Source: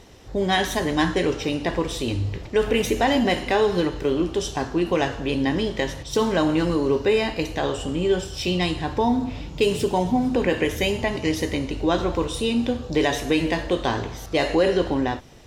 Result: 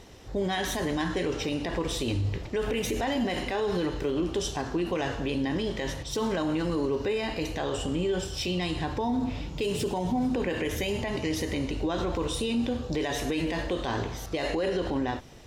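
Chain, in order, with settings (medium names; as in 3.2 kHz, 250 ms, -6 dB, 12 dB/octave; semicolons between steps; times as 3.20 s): peak limiter -19 dBFS, peak gain reduction 10.5 dB; trim -1.5 dB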